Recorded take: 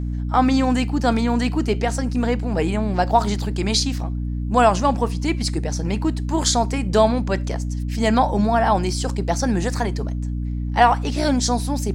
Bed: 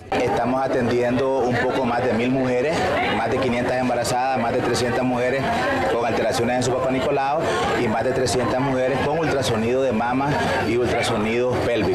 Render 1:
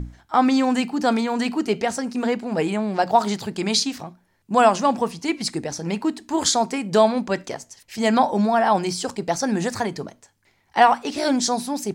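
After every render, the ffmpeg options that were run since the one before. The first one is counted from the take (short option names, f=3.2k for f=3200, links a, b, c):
-af "bandreject=f=60:t=h:w=6,bandreject=f=120:t=h:w=6,bandreject=f=180:t=h:w=6,bandreject=f=240:t=h:w=6,bandreject=f=300:t=h:w=6"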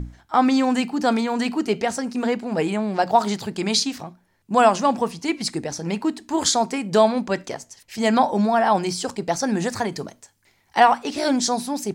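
-filter_complex "[0:a]asettb=1/sr,asplit=3[a][b][c];[a]atrim=end=9.924[d];[b]atrim=start=9.92:end=10.8,asetpts=PTS-STARTPTS,afade=t=in:d=0.004:c=qsin,afade=t=out:st=0.876:d=0.004:c=qsin,highshelf=f=4.5k:g=7[e];[c]atrim=start=10.796[f];[d][e]acrossfade=d=0.004:c1=hsin:c2=qsin[g];[g][f]acrossfade=d=0.004:c1=qsin:c2=hsin"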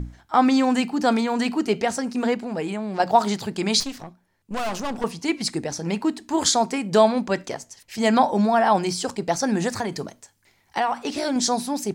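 -filter_complex "[0:a]asettb=1/sr,asplit=3[a][b][c];[a]atrim=end=2.344[d];[b]atrim=start=2.34:end=3,asetpts=PTS-STARTPTS,afade=t=in:d=0.004:c=qsin,afade=t=out:st=0.656:d=0.004:c=qsin,acompressor=threshold=-27dB:ratio=2:attack=3.2:release=140:knee=1:detection=peak[e];[c]atrim=start=2.996[f];[d][e]acrossfade=d=0.004:c1=hsin:c2=qsin[g];[g][f]acrossfade=d=0.004:c1=qsin:c2=hsin,asettb=1/sr,asplit=3[h][i][j];[h]atrim=end=3.804[k];[i]atrim=start=3.8:end=5.04,asetpts=PTS-STARTPTS,afade=t=in:d=0.004:c=qsin,afade=t=out:st=1.236:d=0.004:c=qsin,aeval=exprs='(tanh(17.8*val(0)+0.7)-tanh(0.7))/17.8':c=same[l];[j]atrim=start=5.036[m];[k][l]acrossfade=d=0.004:c1=hsin:c2=qsin[n];[n][m]acrossfade=d=0.004:c1=qsin:c2=hsin,asettb=1/sr,asplit=3[o][p][q];[o]atrim=end=9.794[r];[p]atrim=start=9.79:end=11.36,asetpts=PTS-STARTPTS,afade=t=in:d=0.004:c=qsin,afade=t=out:st=1.566:d=0.004:c=qsin,acompressor=threshold=-21dB:ratio=3:attack=3.2:release=140:knee=1:detection=peak[s];[q]atrim=start=11.356[t];[r][s]acrossfade=d=0.004:c1=hsin:c2=qsin[u];[u][t]acrossfade=d=0.004:c1=qsin:c2=hsin"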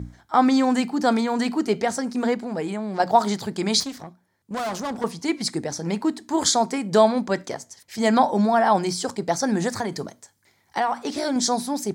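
-af "highpass=73,equalizer=f=2.7k:t=o:w=0.29:g=-8"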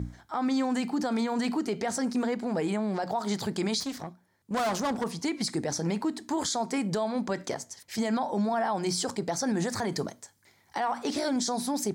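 -af "acompressor=threshold=-22dB:ratio=10,alimiter=limit=-20.5dB:level=0:latency=1:release=26"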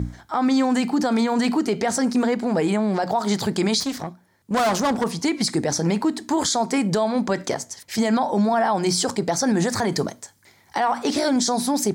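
-af "volume=8dB"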